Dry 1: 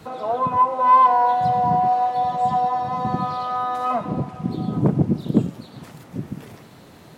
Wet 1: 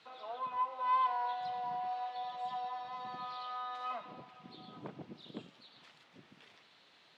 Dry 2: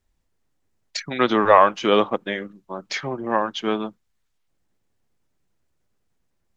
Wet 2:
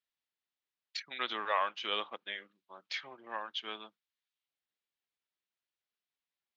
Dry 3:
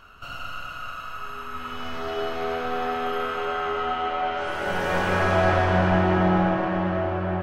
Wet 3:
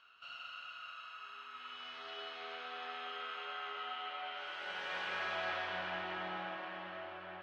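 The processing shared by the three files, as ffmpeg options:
-af "bandpass=f=3.6k:t=q:w=1.7:csg=0,aemphasis=mode=reproduction:type=75kf,volume=-1dB"

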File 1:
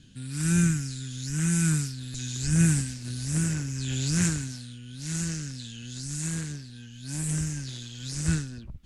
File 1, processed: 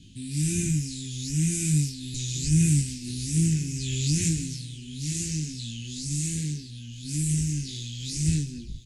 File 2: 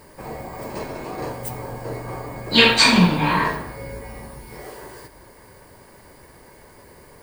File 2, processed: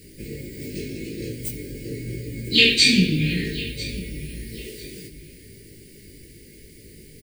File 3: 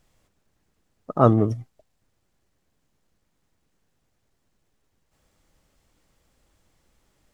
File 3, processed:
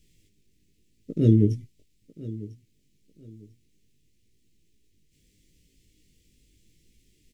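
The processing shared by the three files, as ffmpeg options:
-filter_complex "[0:a]asplit=2[a][b];[b]acompressor=threshold=-30dB:ratio=6,volume=-2.5dB[c];[a][c]amix=inputs=2:normalize=0,flanger=delay=18:depth=2.7:speed=0.88,asuperstop=centerf=950:order=8:qfactor=0.53,aecho=1:1:997|1994:0.133|0.0347,volume=2dB"

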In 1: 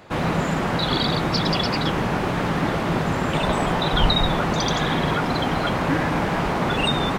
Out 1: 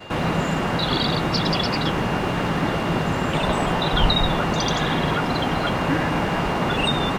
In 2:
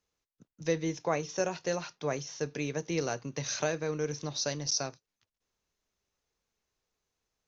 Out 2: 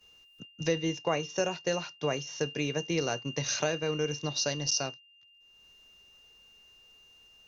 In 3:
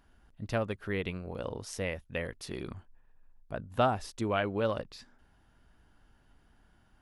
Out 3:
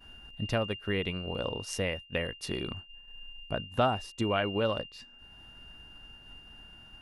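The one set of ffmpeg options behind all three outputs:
-af "acompressor=mode=upward:threshold=-24dB:ratio=2.5,aeval=exprs='val(0)+0.0126*sin(2*PI*2800*n/s)':c=same,agate=range=-33dB:threshold=-29dB:ratio=3:detection=peak"

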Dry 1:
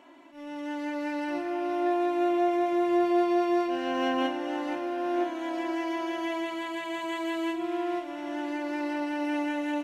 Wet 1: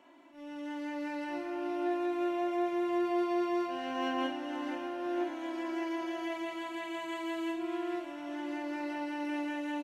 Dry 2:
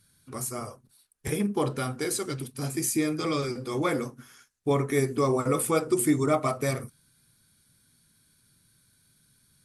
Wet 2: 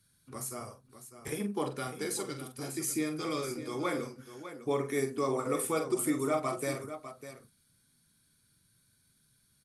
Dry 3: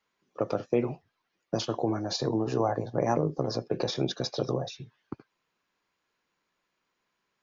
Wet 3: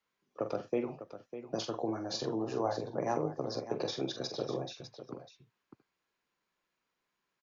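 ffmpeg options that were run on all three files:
-filter_complex "[0:a]acrossover=split=200|1400[a][b][c];[a]acompressor=threshold=-43dB:ratio=6[d];[d][b][c]amix=inputs=3:normalize=0,aecho=1:1:45|601:0.376|0.266,volume=-6dB"

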